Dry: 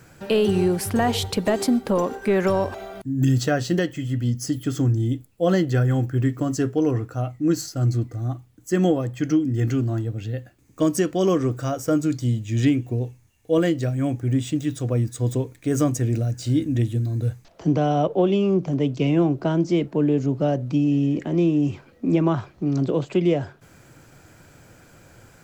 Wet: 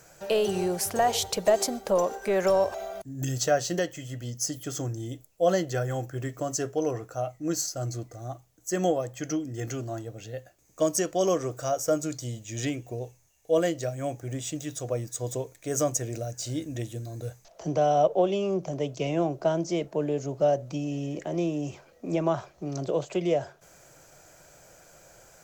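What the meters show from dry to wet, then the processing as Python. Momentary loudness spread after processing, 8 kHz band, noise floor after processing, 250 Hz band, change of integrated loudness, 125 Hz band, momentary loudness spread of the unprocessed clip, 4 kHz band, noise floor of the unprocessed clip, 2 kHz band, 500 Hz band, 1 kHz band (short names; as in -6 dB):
13 LU, +3.5 dB, -59 dBFS, -11.0 dB, -6.0 dB, -12.0 dB, 6 LU, -2.5 dB, -53 dBFS, -5.0 dB, -2.0 dB, -0.5 dB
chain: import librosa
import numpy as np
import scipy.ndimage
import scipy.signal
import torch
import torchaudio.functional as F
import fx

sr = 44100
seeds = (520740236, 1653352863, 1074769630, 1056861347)

y = fx.graphic_eq_15(x, sr, hz=(100, 250, 630, 6300, 16000), db=(-11, -10, 9, 10, 9))
y = y * 10.0 ** (-5.5 / 20.0)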